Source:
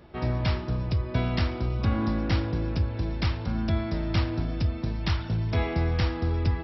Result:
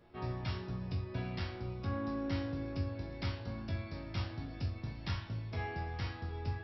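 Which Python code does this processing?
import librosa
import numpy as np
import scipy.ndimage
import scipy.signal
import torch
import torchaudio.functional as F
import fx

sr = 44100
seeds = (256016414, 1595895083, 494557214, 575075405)

y = fx.rider(x, sr, range_db=10, speed_s=0.5)
y = fx.resonator_bank(y, sr, root=42, chord='major', decay_s=0.39)
y = y * 10.0 ** (3.0 / 20.0)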